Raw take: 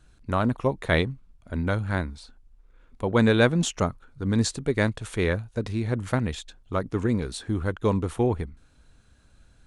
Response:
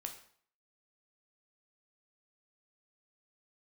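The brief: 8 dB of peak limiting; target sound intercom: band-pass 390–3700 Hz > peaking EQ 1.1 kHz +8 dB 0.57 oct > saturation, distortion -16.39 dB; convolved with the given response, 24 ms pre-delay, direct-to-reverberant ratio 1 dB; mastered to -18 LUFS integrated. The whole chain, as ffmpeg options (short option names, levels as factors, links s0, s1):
-filter_complex "[0:a]alimiter=limit=0.168:level=0:latency=1,asplit=2[s0][s1];[1:a]atrim=start_sample=2205,adelay=24[s2];[s1][s2]afir=irnorm=-1:irlink=0,volume=1.19[s3];[s0][s3]amix=inputs=2:normalize=0,highpass=390,lowpass=3700,equalizer=f=1100:t=o:w=0.57:g=8,asoftclip=threshold=0.15,volume=4.22"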